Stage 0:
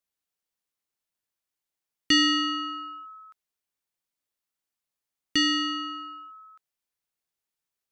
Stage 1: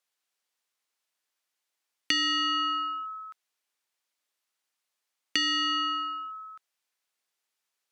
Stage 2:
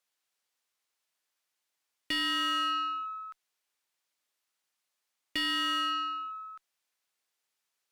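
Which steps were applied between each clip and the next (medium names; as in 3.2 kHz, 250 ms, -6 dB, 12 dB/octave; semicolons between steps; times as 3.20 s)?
compression 8:1, threshold -31 dBFS, peak gain reduction 13 dB; frequency weighting A; trim +6 dB
single-diode clipper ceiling -24.5 dBFS; slew-rate limiter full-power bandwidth 110 Hz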